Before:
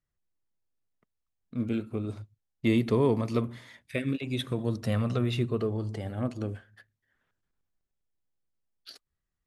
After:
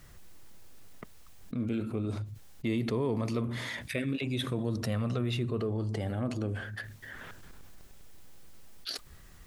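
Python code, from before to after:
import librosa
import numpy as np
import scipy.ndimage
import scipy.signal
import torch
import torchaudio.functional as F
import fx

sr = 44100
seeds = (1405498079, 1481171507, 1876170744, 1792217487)

y = fx.env_flatten(x, sr, amount_pct=70)
y = y * librosa.db_to_amplitude(-7.5)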